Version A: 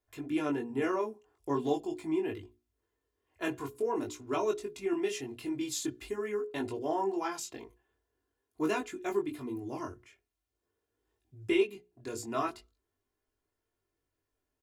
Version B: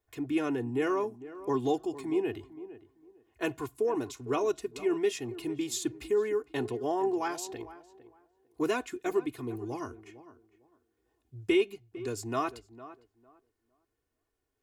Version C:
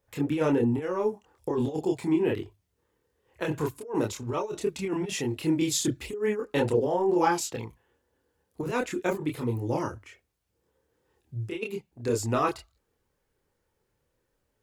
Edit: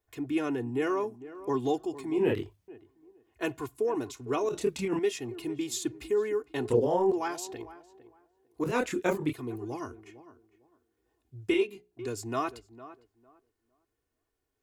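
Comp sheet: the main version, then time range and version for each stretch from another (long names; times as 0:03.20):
B
0:02.18–0:02.68: punch in from C
0:04.49–0:04.99: punch in from C
0:06.70–0:07.12: punch in from C
0:08.64–0:09.33: punch in from C
0:11.54–0:11.99: punch in from A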